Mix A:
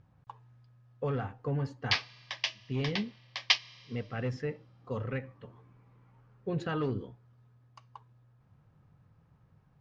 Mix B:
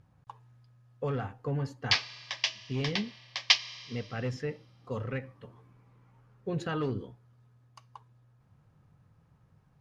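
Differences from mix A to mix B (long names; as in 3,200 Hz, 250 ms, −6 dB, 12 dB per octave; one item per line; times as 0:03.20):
background: send +7.0 dB
master: remove high-frequency loss of the air 88 metres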